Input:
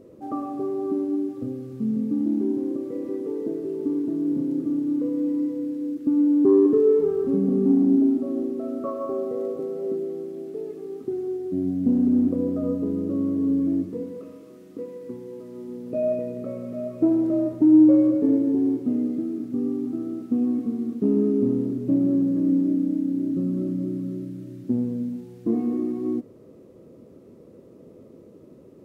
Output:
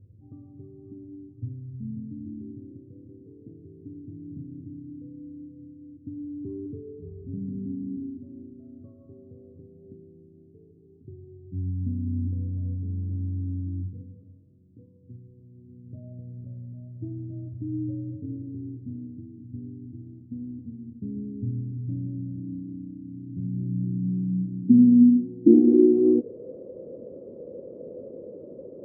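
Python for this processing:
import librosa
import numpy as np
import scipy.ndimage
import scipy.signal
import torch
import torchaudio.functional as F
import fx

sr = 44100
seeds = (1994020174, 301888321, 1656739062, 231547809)

y = fx.bessel_lowpass(x, sr, hz=770.0, order=2, at=(12.4, 14.01))
y = fx.filter_sweep_lowpass(y, sr, from_hz=100.0, to_hz=540.0, start_s=23.25, end_s=26.55, q=5.3)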